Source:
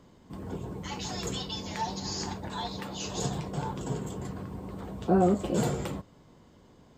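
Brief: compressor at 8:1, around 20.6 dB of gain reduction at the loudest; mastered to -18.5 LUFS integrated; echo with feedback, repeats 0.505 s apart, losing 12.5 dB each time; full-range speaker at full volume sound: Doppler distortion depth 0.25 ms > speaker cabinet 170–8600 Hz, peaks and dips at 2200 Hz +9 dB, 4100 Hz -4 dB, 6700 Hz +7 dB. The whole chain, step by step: compressor 8:1, threshold -41 dBFS; feedback echo 0.505 s, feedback 24%, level -12.5 dB; Doppler distortion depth 0.25 ms; speaker cabinet 170–8600 Hz, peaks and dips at 2200 Hz +9 dB, 4100 Hz -4 dB, 6700 Hz +7 dB; gain +26 dB

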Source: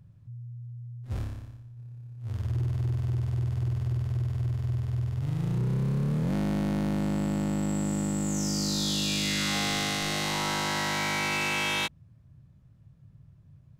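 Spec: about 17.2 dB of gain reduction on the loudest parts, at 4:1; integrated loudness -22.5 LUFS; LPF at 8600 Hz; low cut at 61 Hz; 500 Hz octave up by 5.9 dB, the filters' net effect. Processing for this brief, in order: HPF 61 Hz; LPF 8600 Hz; bell 500 Hz +7.5 dB; compressor 4:1, threshold -45 dBFS; gain +22 dB

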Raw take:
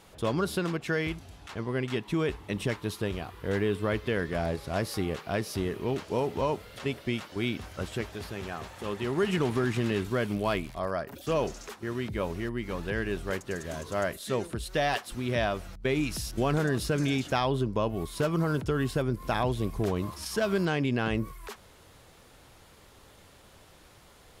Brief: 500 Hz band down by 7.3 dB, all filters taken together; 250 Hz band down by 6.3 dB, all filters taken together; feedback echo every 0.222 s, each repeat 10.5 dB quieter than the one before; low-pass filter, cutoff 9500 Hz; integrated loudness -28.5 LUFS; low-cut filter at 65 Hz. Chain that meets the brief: HPF 65 Hz; LPF 9500 Hz; bell 250 Hz -6.5 dB; bell 500 Hz -7.5 dB; feedback echo 0.222 s, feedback 30%, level -10.5 dB; gain +6 dB

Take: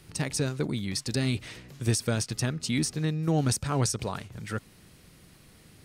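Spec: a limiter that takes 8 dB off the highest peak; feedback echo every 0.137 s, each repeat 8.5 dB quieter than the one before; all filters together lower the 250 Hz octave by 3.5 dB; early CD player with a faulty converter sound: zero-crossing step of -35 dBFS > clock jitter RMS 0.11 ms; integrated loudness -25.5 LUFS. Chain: bell 250 Hz -5 dB; limiter -22 dBFS; feedback echo 0.137 s, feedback 38%, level -8.5 dB; zero-crossing step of -35 dBFS; clock jitter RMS 0.11 ms; gain +5.5 dB

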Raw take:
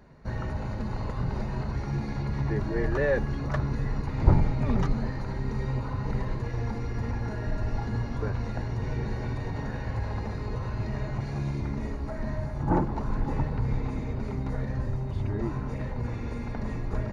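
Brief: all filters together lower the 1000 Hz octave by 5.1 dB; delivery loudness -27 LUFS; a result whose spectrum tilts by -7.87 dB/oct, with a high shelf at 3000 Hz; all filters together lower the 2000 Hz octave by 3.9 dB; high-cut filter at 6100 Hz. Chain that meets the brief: LPF 6100 Hz; bell 1000 Hz -6 dB; bell 2000 Hz -4.5 dB; high shelf 3000 Hz +6 dB; gain +4.5 dB

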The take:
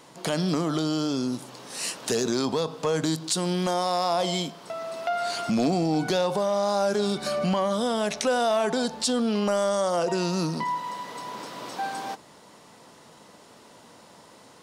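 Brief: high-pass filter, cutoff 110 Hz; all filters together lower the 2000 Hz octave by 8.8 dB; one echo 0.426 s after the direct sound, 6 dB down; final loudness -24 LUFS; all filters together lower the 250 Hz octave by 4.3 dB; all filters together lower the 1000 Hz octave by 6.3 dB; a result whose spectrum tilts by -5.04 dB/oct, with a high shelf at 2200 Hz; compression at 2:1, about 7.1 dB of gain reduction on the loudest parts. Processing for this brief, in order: HPF 110 Hz; bell 250 Hz -5 dB; bell 1000 Hz -6 dB; bell 2000 Hz -5.5 dB; high shelf 2200 Hz -8 dB; compressor 2:1, threshold -37 dBFS; echo 0.426 s -6 dB; gain +12 dB

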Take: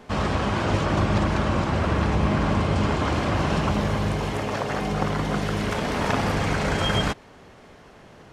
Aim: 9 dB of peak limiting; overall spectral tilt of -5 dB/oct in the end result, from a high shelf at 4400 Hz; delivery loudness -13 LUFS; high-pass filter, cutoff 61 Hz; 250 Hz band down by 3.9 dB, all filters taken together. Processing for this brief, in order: HPF 61 Hz; bell 250 Hz -5.5 dB; high shelf 4400 Hz +4.5 dB; gain +14 dB; limiter -3.5 dBFS

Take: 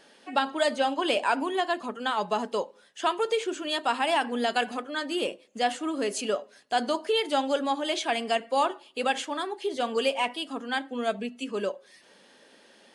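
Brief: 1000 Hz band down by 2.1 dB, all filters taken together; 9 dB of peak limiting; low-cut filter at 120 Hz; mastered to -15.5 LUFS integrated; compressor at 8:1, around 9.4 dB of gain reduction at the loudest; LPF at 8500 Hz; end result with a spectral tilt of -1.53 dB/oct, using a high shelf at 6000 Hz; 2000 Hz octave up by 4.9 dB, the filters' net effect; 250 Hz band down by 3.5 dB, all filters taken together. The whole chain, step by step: HPF 120 Hz; LPF 8500 Hz; bell 250 Hz -4 dB; bell 1000 Hz -4.5 dB; bell 2000 Hz +7.5 dB; high shelf 6000 Hz +6 dB; compressor 8:1, threshold -29 dBFS; gain +20.5 dB; limiter -4 dBFS

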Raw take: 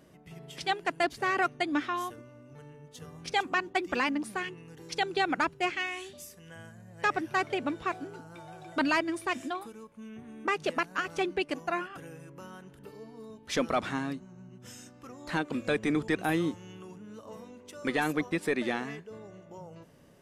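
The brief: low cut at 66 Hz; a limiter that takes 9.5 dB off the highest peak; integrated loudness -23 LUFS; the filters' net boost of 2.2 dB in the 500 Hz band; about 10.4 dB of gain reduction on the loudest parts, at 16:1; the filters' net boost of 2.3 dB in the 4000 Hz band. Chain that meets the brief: HPF 66 Hz; bell 500 Hz +3 dB; bell 4000 Hz +3 dB; compressor 16:1, threshold -32 dBFS; gain +18.5 dB; limiter -10 dBFS

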